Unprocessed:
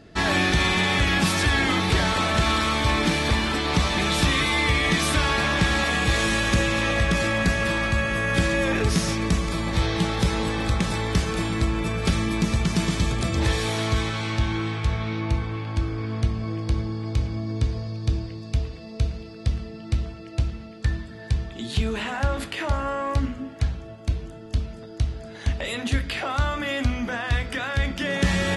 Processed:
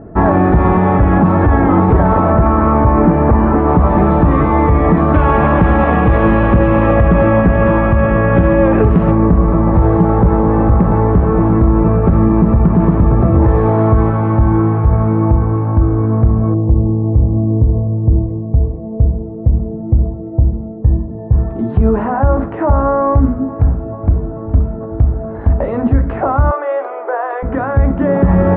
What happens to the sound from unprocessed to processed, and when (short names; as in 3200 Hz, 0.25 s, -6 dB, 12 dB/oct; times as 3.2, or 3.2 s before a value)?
2.3–3.68 bell 3600 Hz -9.5 dB 0.32 oct
5.14–9.11 bell 2900 Hz +11.5 dB 0.87 oct
16.54–21.32 running mean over 30 samples
23.04–23.89 echo throw 0.44 s, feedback 75%, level -17 dB
26.51–27.43 steep high-pass 360 Hz 72 dB/oct
whole clip: LPF 1100 Hz 24 dB/oct; maximiser +16.5 dB; gain -1 dB